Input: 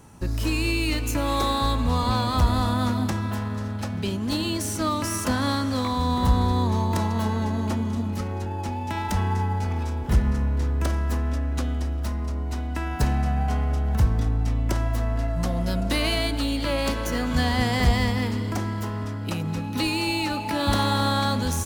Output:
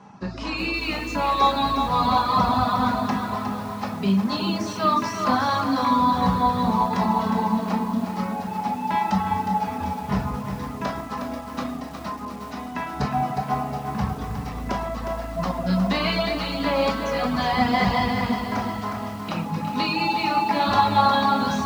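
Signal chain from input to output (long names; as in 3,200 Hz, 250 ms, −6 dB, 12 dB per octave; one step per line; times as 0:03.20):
convolution reverb RT60 0.95 s, pre-delay 5 ms, DRR −0.5 dB
reverb reduction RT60 1.1 s
loudspeaker in its box 160–5,100 Hz, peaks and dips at 200 Hz +4 dB, 350 Hz −5 dB, 780 Hz +6 dB, 1,100 Hz +8 dB, 3,200 Hz −3 dB
feedback echo at a low word length 361 ms, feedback 55%, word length 7 bits, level −7 dB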